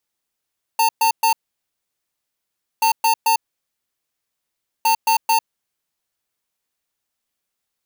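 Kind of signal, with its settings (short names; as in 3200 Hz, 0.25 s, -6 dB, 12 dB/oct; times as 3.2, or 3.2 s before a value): beep pattern square 900 Hz, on 0.10 s, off 0.12 s, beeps 3, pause 1.49 s, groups 3, -15.5 dBFS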